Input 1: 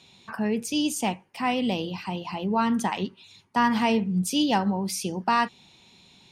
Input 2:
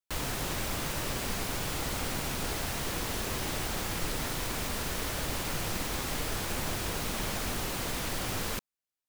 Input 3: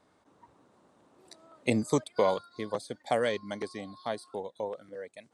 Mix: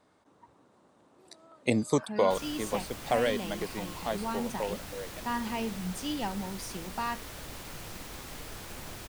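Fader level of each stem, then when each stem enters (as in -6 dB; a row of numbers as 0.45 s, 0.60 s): -11.0 dB, -9.5 dB, +0.5 dB; 1.70 s, 2.20 s, 0.00 s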